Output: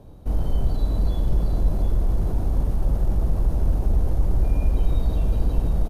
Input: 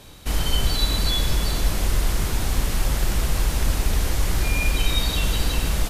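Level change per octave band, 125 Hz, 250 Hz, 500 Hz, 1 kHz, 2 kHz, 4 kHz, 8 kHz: +1.5, 0.0, −1.5, −7.0, −21.0, −24.0, −23.0 decibels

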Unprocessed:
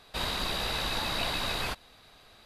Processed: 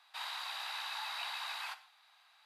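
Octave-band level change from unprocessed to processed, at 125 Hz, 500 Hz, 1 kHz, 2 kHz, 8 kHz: below −40 dB, −22.0 dB, −7.0 dB, −7.0 dB, −11.0 dB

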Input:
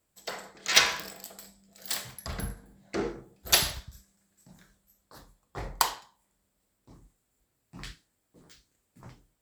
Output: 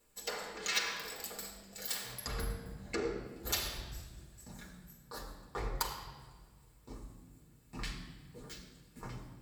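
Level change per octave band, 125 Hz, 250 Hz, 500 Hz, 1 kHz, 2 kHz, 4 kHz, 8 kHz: −2.0, −4.0, −3.5, −8.5, −9.0, −10.5, −9.5 decibels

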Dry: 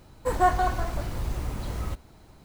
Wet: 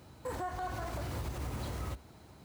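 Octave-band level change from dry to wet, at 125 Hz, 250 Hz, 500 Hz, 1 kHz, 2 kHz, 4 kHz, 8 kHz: −7.0, −8.0, −11.0, −14.0, −11.0, −6.0, −6.5 decibels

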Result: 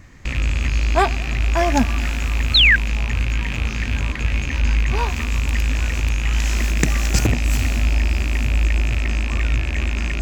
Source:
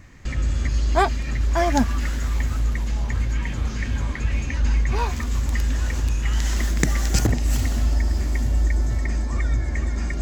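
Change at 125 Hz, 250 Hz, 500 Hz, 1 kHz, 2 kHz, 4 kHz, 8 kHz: +2.0, +2.0, +2.0, +2.0, +10.0, +13.5, +2.0 decibels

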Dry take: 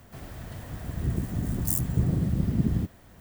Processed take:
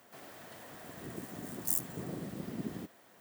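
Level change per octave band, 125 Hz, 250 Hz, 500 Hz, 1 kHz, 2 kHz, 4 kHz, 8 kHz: −20.5, −12.5, −5.0, −3.5, −3.5, −3.5, −3.5 decibels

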